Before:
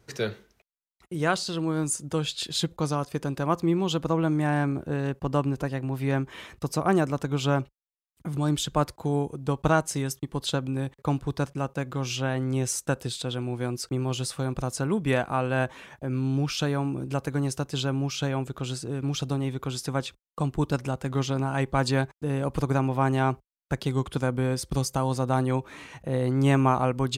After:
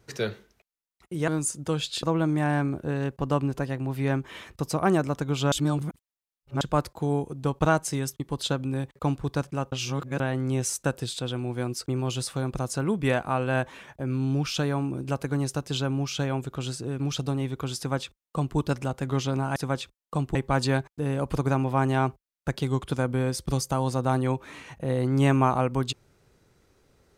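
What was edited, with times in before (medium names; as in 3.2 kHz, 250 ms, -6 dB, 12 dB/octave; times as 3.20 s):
1.28–1.73 s: delete
2.48–4.06 s: delete
7.55–8.64 s: reverse
11.75–12.23 s: reverse
19.81–20.60 s: copy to 21.59 s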